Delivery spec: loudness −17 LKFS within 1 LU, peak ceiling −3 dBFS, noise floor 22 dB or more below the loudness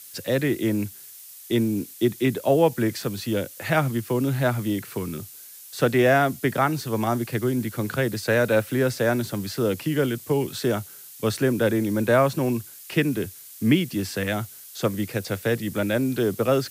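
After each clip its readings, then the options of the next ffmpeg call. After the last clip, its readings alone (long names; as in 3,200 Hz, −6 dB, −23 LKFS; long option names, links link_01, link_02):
background noise floor −44 dBFS; target noise floor −46 dBFS; integrated loudness −24.0 LKFS; sample peak −6.5 dBFS; target loudness −17.0 LKFS
→ -af "afftdn=noise_reduction=6:noise_floor=-44"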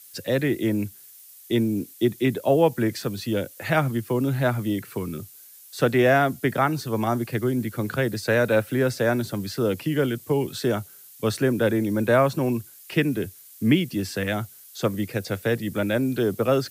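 background noise floor −48 dBFS; integrated loudness −24.0 LKFS; sample peak −6.5 dBFS; target loudness −17.0 LKFS
→ -af "volume=7dB,alimiter=limit=-3dB:level=0:latency=1"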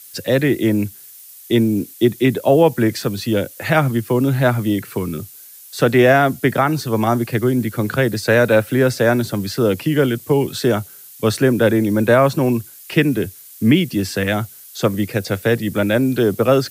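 integrated loudness −17.5 LKFS; sample peak −3.0 dBFS; background noise floor −41 dBFS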